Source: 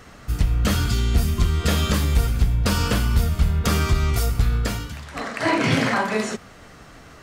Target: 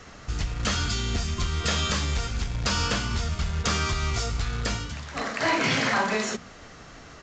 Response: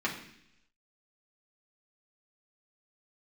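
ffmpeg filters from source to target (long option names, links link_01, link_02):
-filter_complex "[0:a]highshelf=frequency=5300:gain=5.5,bandreject=frequency=60:width_type=h:width=6,bandreject=frequency=120:width_type=h:width=6,bandreject=frequency=180:width_type=h:width=6,bandreject=frequency=240:width_type=h:width=6,bandreject=frequency=300:width_type=h:width=6,acrossover=split=670|1100[link_01][link_02][link_03];[link_01]alimiter=limit=-20dB:level=0:latency=1:release=297[link_04];[link_04][link_02][link_03]amix=inputs=3:normalize=0,acrusher=bits=3:mode=log:mix=0:aa=0.000001,asplit=2[link_05][link_06];[link_06]asoftclip=type=hard:threshold=-19.5dB,volume=-5dB[link_07];[link_05][link_07]amix=inputs=2:normalize=0,aresample=16000,aresample=44100,volume=-5dB"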